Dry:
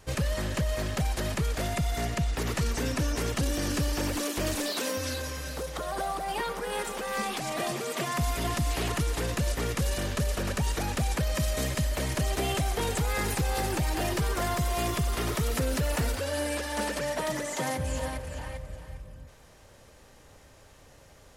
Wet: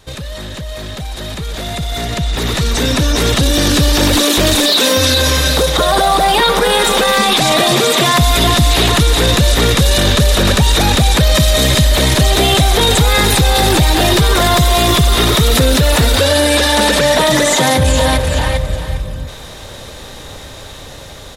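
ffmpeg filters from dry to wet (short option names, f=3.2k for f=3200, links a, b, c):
-filter_complex "[0:a]asplit=2[a][b];[b]afade=t=in:st=1.01:d=0.01,afade=t=out:st=1.57:d=0.01,aecho=0:1:320|640|960|1280|1600|1920|2240|2560:0.223872|0.145517|0.094586|0.0614809|0.0399626|0.0259757|0.0168842|0.0109747[c];[a][c]amix=inputs=2:normalize=0,equalizer=f=3.7k:t=o:w=0.26:g=13.5,alimiter=level_in=1.5dB:limit=-24dB:level=0:latency=1:release=21,volume=-1.5dB,dynaudnorm=f=470:g=11:m=15.5dB,volume=7dB"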